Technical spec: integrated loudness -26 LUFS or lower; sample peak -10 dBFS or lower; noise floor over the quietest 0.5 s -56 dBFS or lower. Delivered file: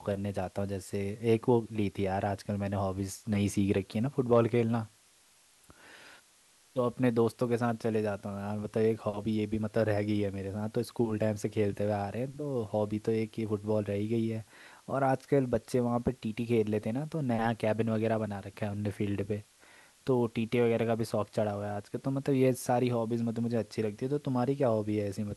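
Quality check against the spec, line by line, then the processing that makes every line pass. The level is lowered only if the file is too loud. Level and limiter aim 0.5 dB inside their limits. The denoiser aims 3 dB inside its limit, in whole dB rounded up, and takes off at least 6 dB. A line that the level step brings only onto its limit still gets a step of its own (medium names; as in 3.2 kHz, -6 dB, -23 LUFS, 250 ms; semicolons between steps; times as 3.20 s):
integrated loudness -31.5 LUFS: pass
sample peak -11.5 dBFS: pass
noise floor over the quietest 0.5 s -63 dBFS: pass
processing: none needed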